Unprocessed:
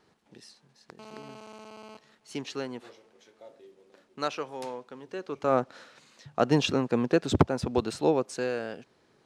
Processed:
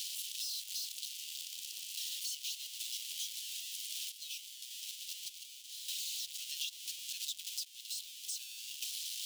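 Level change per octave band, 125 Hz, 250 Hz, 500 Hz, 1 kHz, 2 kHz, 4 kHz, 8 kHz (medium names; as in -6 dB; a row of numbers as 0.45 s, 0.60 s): under -40 dB, under -40 dB, under -40 dB, under -40 dB, -12.0 dB, +2.5 dB, +8.0 dB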